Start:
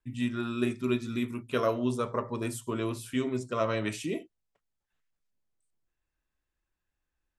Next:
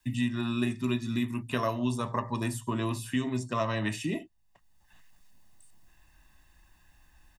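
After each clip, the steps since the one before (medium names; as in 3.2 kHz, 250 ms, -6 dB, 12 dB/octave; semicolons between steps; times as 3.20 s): comb 1.1 ms, depth 66%; three bands compressed up and down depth 70%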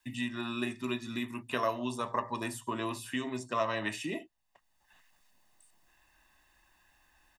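tone controls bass -13 dB, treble -3 dB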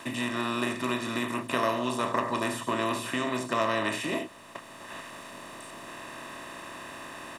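spectral levelling over time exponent 0.4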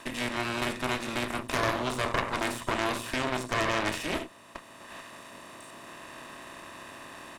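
Chebyshev shaper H 6 -9 dB, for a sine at -11.5 dBFS; trim -3.5 dB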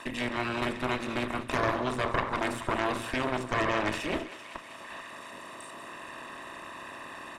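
resonances exaggerated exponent 1.5; thinning echo 194 ms, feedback 66%, high-pass 660 Hz, level -13.5 dB; tape noise reduction on one side only encoder only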